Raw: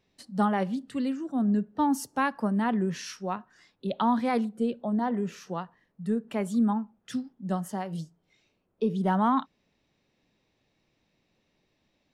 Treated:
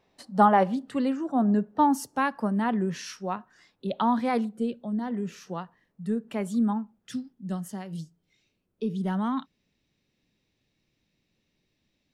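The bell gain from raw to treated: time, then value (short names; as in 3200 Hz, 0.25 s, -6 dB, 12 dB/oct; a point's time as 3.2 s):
bell 810 Hz 2 oct
1.59 s +10 dB
2.14 s +1 dB
4.5 s +1 dB
4.91 s -10 dB
5.52 s -1.5 dB
6.77 s -1.5 dB
7.37 s -9 dB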